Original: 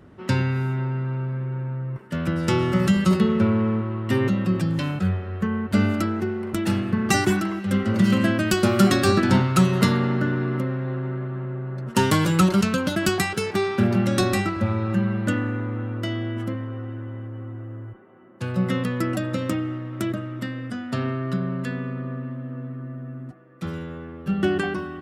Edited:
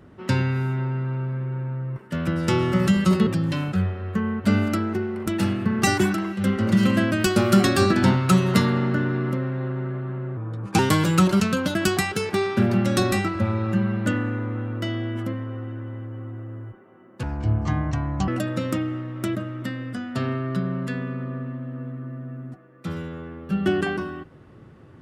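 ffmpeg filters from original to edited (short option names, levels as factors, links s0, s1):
-filter_complex "[0:a]asplit=6[s0][s1][s2][s3][s4][s5];[s0]atrim=end=3.272[s6];[s1]atrim=start=4.538:end=11.644[s7];[s2]atrim=start=11.64:end=12,asetpts=PTS-STARTPTS,asetrate=37926,aresample=44100,atrim=end_sample=18460,asetpts=PTS-STARTPTS[s8];[s3]atrim=start=11.996:end=18.444[s9];[s4]atrim=start=18.44:end=19.05,asetpts=PTS-STARTPTS,asetrate=25578,aresample=44100,atrim=end_sample=46381,asetpts=PTS-STARTPTS[s10];[s5]atrim=start=19.046[s11];[s6][s7]acrossfade=d=0.004:c1=hsin:c2=hsin[s12];[s12][s8]acrossfade=d=0.004:c1=hsin:c2=hsin[s13];[s13][s9]acrossfade=d=0.004:c1=hsin:c2=hsin[s14];[s14][s10]acrossfade=d=0.004:c1=hsin:c2=hsin[s15];[s15][s11]acrossfade=d=0.004:c1=hsin:c2=hsin"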